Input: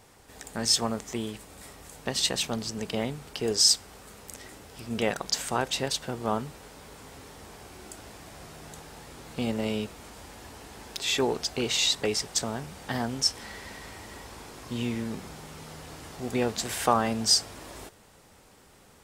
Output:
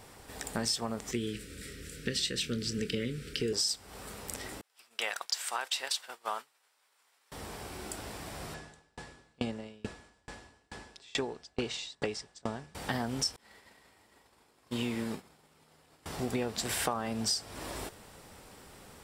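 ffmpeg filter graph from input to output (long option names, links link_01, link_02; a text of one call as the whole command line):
ffmpeg -i in.wav -filter_complex "[0:a]asettb=1/sr,asplit=3[link_01][link_02][link_03];[link_01]atrim=end=1.114[link_04];[link_02]atrim=start=1.11:end=3.53,asetpts=PTS-STARTPTS,afade=type=in:duration=0.004:curve=qsin,afade=type=out:start_time=2.416:duration=0.004:curve=qsin,asuperstop=centerf=840:order=8:qfactor=0.91,highshelf=frequency=10000:gain=-9.5,asplit=2[link_05][link_06];[link_06]adelay=25,volume=-12dB[link_07];[link_05][link_07]amix=inputs=2:normalize=0,atrim=end_sample=106722[link_08];[link_03]atrim=start=3.526[link_09];[link_04][link_08]acrossfade=duration=0.004:curve1=hsin:curve2=qsin[link_10];[link_10][link_09]acrossfade=duration=0.004:curve1=qsin:curve2=hsin,asettb=1/sr,asplit=3[link_11][link_12][link_13];[link_11]atrim=end=4.614[link_14];[link_12]atrim=start=4.61:end=7.32,asetpts=PTS-STARTPTS,afade=type=in:duration=0.004:curve=qsin,afade=type=out:start_time=2.706:duration=0.004:curve=qsin,highpass=1100,agate=range=-33dB:threshold=-39dB:ratio=3:release=100:detection=peak[link_15];[link_13]atrim=start=7.316[link_16];[link_14][link_15]acrossfade=duration=0.004:curve1=hsin:curve2=qsin[link_17];[link_17][link_16]acrossfade=duration=0.004:curve1=qsin:curve2=hsin,asettb=1/sr,asplit=3[link_18][link_19][link_20];[link_18]atrim=end=8.544[link_21];[link_19]atrim=start=8.54:end=12.75,asetpts=PTS-STARTPTS,afade=type=in:duration=0.004:curve=qsin,afade=type=out:start_time=4.206:duration=0.004:curve=qsin,lowpass=frequency=8500:width=0.5412,lowpass=frequency=8500:width=1.3066,aeval=exprs='val(0)+0.00282*sin(2*PI*1700*n/s)':channel_layout=same,aeval=exprs='val(0)*pow(10,-35*if(lt(mod(2.3*n/s,1),2*abs(2.3)/1000),1-mod(2.3*n/s,1)/(2*abs(2.3)/1000),(mod(2.3*n/s,1)-2*abs(2.3)/1000)/(1-2*abs(2.3)/1000))/20)':channel_layout=same[link_22];[link_20]atrim=start=12.746[link_23];[link_21][link_22]acrossfade=duration=0.004:curve1=hsin:curve2=qsin[link_24];[link_24][link_23]acrossfade=duration=0.004:curve1=qsin:curve2=hsin,asettb=1/sr,asplit=3[link_25][link_26][link_27];[link_25]atrim=end=13.364[link_28];[link_26]atrim=start=13.36:end=16.06,asetpts=PTS-STARTPTS,afade=type=in:duration=0.004:curve=qsin,afade=type=out:start_time=2.696:duration=0.004:curve=qsin,bandreject=frequency=5800:width=18,agate=range=-33dB:threshold=-31dB:ratio=3:release=100:detection=peak,lowshelf=frequency=140:gain=-9.5[link_29];[link_27]atrim=start=16.056[link_30];[link_28][link_29]acrossfade=duration=0.004:curve1=hsin:curve2=qsin[link_31];[link_31][link_30]acrossfade=duration=0.004:curve1=qsin:curve2=hsin,bandreject=frequency=6500:width=12,acompressor=threshold=-33dB:ratio=6,volume=3.5dB" out.wav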